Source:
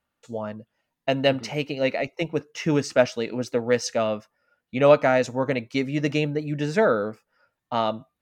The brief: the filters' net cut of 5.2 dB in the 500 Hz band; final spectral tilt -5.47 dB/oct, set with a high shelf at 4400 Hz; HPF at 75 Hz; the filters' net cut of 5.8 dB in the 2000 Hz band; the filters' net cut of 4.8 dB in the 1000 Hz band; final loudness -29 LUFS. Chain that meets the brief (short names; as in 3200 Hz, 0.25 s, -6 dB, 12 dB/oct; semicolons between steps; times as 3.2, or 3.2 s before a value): HPF 75 Hz; bell 500 Hz -5 dB; bell 1000 Hz -3 dB; bell 2000 Hz -5 dB; high shelf 4400 Hz -6.5 dB; gain -0.5 dB